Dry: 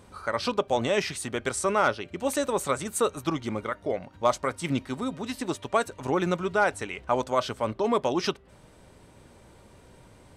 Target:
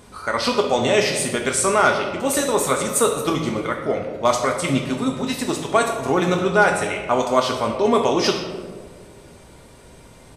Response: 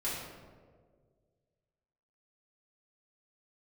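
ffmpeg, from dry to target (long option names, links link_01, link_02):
-filter_complex "[0:a]asplit=2[link_01][link_02];[1:a]atrim=start_sample=2205,highshelf=frequency=2800:gain=11[link_03];[link_02][link_03]afir=irnorm=-1:irlink=0,volume=-6dB[link_04];[link_01][link_04]amix=inputs=2:normalize=0,aresample=32000,aresample=44100,volume=3dB"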